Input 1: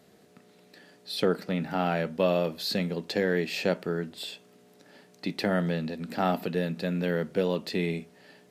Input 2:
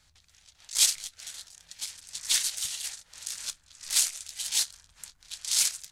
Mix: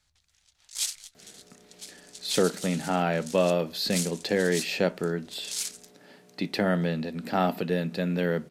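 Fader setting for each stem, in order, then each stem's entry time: +1.5, -7.5 dB; 1.15, 0.00 s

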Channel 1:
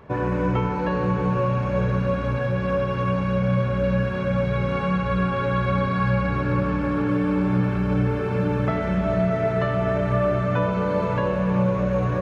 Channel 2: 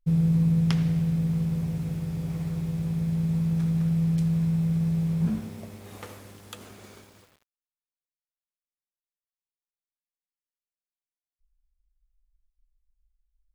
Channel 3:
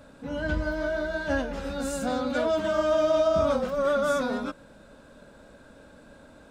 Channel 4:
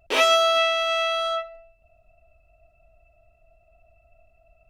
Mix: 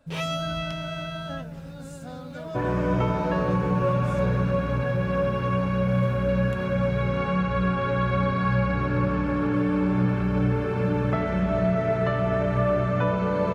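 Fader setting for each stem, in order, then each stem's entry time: -1.5, -12.0, -12.0, -12.5 dB; 2.45, 0.00, 0.00, 0.00 s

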